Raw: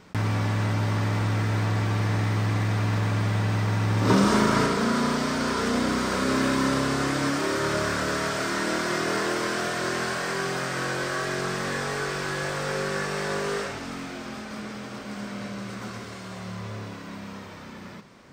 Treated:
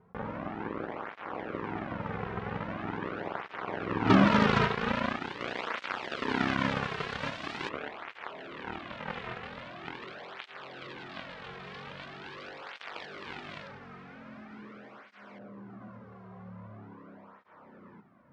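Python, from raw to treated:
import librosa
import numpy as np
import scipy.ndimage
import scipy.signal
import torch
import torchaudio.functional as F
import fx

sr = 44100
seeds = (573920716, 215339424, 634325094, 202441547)

y = fx.filter_lfo_lowpass(x, sr, shape='saw_up', hz=0.13, low_hz=980.0, high_hz=2200.0, q=1.1)
y = fx.cheby_harmonics(y, sr, harmonics=(7,), levels_db=(-14,), full_scale_db=-8.5)
y = fx.flanger_cancel(y, sr, hz=0.43, depth_ms=3.6)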